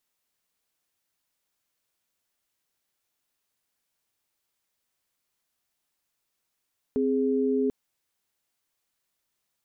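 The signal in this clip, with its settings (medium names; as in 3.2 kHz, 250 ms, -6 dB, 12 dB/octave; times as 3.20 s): chord C4/G#4 sine, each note -24.5 dBFS 0.74 s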